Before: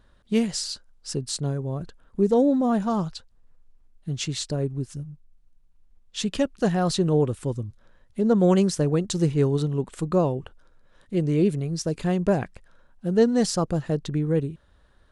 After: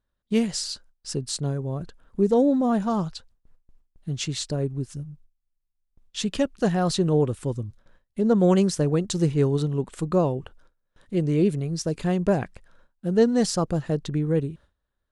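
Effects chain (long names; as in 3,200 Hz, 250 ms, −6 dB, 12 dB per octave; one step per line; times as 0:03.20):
noise gate with hold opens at −46 dBFS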